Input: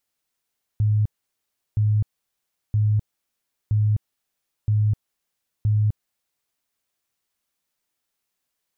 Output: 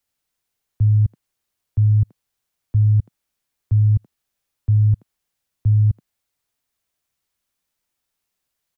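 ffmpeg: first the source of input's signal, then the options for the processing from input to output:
-f lavfi -i "aevalsrc='0.158*sin(2*PI*106*mod(t,0.97))*lt(mod(t,0.97),27/106)':d=5.82:s=44100"
-filter_complex "[0:a]acrossover=split=140|170[a][b][c];[a]acontrast=72[d];[c]aecho=1:1:81:0.422[e];[d][b][e]amix=inputs=3:normalize=0"

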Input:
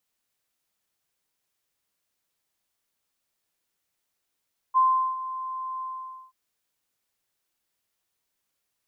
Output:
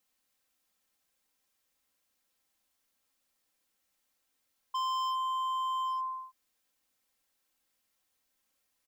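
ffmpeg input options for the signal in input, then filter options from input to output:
-f lavfi -i "aevalsrc='0.168*sin(2*PI*1040*t)':d=1.58:s=44100,afade=t=in:d=0.032,afade=t=out:st=0.032:d=0.386:silence=0.188,afade=t=out:st=1.07:d=0.51"
-af "aecho=1:1:3.8:0.54,alimiter=limit=-20.5dB:level=0:latency=1,asoftclip=type=hard:threshold=-31dB"

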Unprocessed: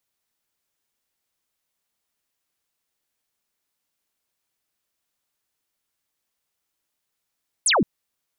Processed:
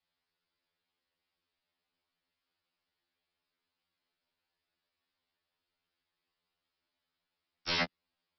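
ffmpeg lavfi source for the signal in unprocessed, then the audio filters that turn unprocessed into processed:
-f lavfi -i "aevalsrc='0.168*clip(t/0.002,0,1)*clip((0.17-t)/0.002,0,1)*sin(2*PI*11000*0.17/log(160/11000)*(exp(log(160/11000)*t/0.17)-1))':d=0.17:s=44100"
-af "adynamicequalizer=threshold=0.0141:dfrequency=210:dqfactor=2.9:tfrequency=210:tqfactor=2.9:attack=5:release=100:ratio=0.375:range=3.5:mode=boostabove:tftype=bell,aresample=11025,aeval=exprs='(mod(13.3*val(0)+1,2)-1)/13.3':c=same,aresample=44100,afftfilt=real='re*2*eq(mod(b,4),0)':imag='im*2*eq(mod(b,4),0)':win_size=2048:overlap=0.75"

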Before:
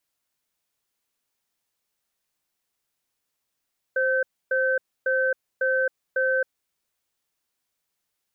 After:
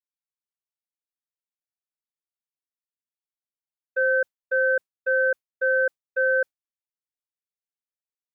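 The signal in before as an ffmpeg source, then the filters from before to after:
-f lavfi -i "aevalsrc='0.075*(sin(2*PI*524*t)+sin(2*PI*1540*t))*clip(min(mod(t,0.55),0.27-mod(t,0.55))/0.005,0,1)':d=2.62:s=44100"
-filter_complex "[0:a]agate=range=-33dB:threshold=-22dB:ratio=3:detection=peak,asplit=2[a][b];[b]alimiter=level_in=2.5dB:limit=-24dB:level=0:latency=1:release=29,volume=-2.5dB,volume=-1.5dB[c];[a][c]amix=inputs=2:normalize=0"

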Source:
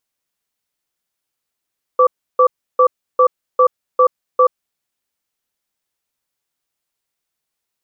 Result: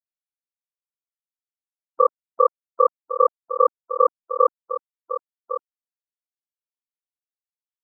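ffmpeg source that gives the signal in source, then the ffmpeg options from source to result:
-f lavfi -i "aevalsrc='0.316*(sin(2*PI*507*t)+sin(2*PI*1160*t))*clip(min(mod(t,0.4),0.08-mod(t,0.4))/0.005,0,1)':d=2.66:s=44100"
-filter_complex "[0:a]afftfilt=real='re*gte(hypot(re,im),0.0316)':imag='im*gte(hypot(re,im),0.0316)':win_size=1024:overlap=0.75,tremolo=f=40:d=1,asplit=2[a][b];[b]aecho=0:1:1106:0.282[c];[a][c]amix=inputs=2:normalize=0"

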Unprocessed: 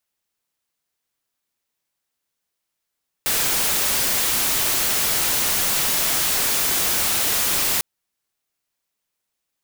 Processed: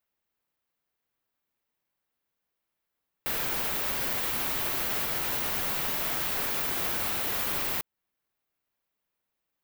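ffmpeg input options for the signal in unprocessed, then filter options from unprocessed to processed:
-f lavfi -i "anoisesrc=c=white:a=0.163:d=4.55:r=44100:seed=1"
-af "equalizer=f=7.5k:t=o:w=2:g=-12.5,alimiter=limit=-21.5dB:level=0:latency=1:release=270"

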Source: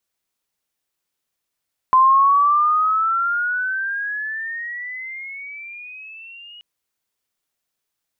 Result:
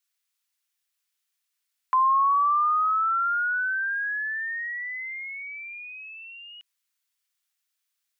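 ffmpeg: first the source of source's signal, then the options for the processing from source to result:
-f lavfi -i "aevalsrc='pow(10,(-9-29*t/4.68)/20)*sin(2*PI*1030*4.68/(18*log(2)/12)*(exp(18*log(2)/12*t/4.68)-1))':d=4.68:s=44100"
-filter_complex "[0:a]acrossover=split=2500[a][b];[b]acompressor=threshold=-50dB:ratio=4:attack=1:release=60[c];[a][c]amix=inputs=2:normalize=0,highpass=1.5k"

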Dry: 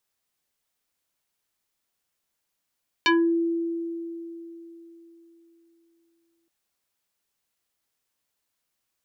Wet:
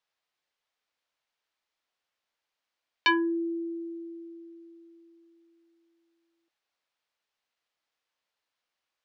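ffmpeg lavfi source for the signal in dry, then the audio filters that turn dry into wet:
-f lavfi -i "aevalsrc='0.168*pow(10,-3*t/3.71)*sin(2*PI*335*t+3.2*pow(10,-3*t/0.28)*sin(2*PI*3.99*335*t))':d=3.42:s=44100"
-filter_complex "[0:a]acrossover=split=380 5200:gain=0.251 1 0.0891[a][b][c];[a][b][c]amix=inputs=3:normalize=0,bandreject=f=390:w=12"

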